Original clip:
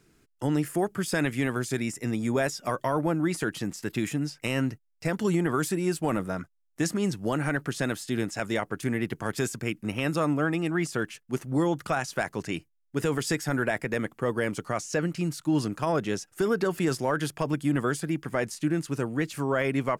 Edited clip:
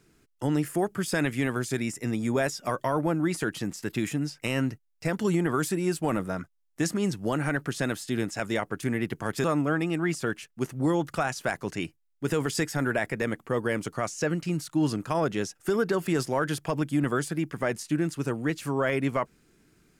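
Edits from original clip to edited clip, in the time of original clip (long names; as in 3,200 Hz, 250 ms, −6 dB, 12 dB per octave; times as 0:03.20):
0:09.44–0:10.16: remove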